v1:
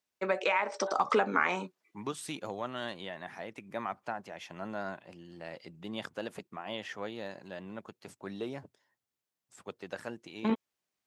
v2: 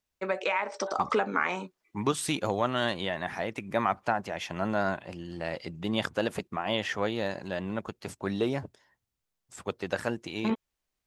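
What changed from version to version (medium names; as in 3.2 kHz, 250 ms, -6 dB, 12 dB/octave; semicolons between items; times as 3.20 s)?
second voice +9.5 dB; master: remove high-pass 130 Hz 12 dB/octave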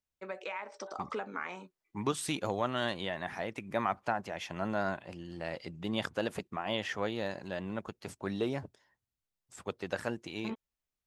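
first voice -11.0 dB; second voice -4.5 dB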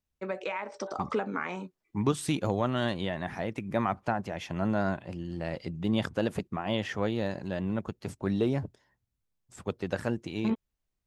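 first voice +3.5 dB; master: add bass shelf 350 Hz +11 dB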